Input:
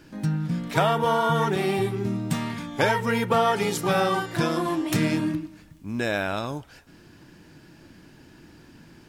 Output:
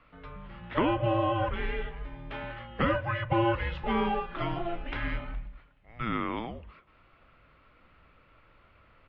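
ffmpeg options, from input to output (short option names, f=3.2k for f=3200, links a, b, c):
-filter_complex "[0:a]acrossover=split=320[a][b];[a]adelay=110[c];[c][b]amix=inputs=2:normalize=0,highpass=f=300:t=q:w=0.5412,highpass=f=300:t=q:w=1.307,lowpass=f=3.4k:t=q:w=0.5176,lowpass=f=3.4k:t=q:w=0.7071,lowpass=f=3.4k:t=q:w=1.932,afreqshift=-350,volume=-3.5dB"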